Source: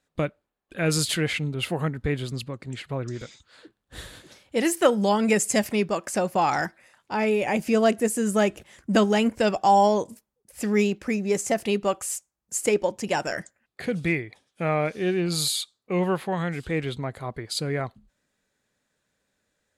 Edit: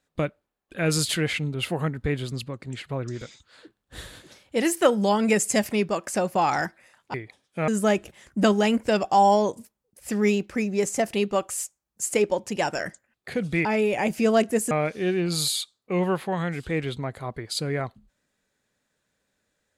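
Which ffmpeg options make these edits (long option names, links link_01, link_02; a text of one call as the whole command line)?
ffmpeg -i in.wav -filter_complex "[0:a]asplit=5[link_01][link_02][link_03][link_04][link_05];[link_01]atrim=end=7.142[link_06];[link_02]atrim=start=14.168:end=14.712[link_07];[link_03]atrim=start=8.198:end=14.172[link_08];[link_04]atrim=start=7.138:end=8.202[link_09];[link_05]atrim=start=14.708[link_10];[link_06][link_07]acrossfade=duration=0.004:curve1=hsin:curve2=hsin[link_11];[link_11][link_08]acrossfade=duration=0.004:curve1=hsin:curve2=hsin[link_12];[link_12][link_09]acrossfade=duration=0.004:curve1=hsin:curve2=hsin[link_13];[link_13][link_10]acrossfade=duration=0.004:curve1=hsin:curve2=hsin" out.wav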